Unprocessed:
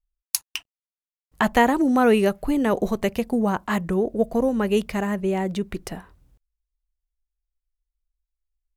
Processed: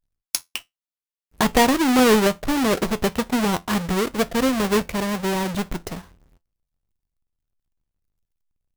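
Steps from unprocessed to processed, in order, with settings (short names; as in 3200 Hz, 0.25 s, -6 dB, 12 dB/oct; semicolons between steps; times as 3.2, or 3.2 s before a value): half-waves squared off; resonator 86 Hz, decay 0.16 s, harmonics all, mix 50%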